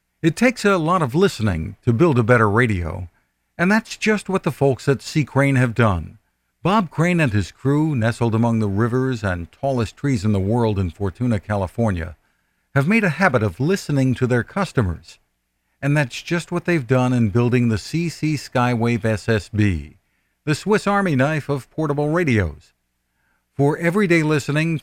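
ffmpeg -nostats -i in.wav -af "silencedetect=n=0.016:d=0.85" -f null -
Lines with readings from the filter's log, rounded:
silence_start: 22.58
silence_end: 23.59 | silence_duration: 1.01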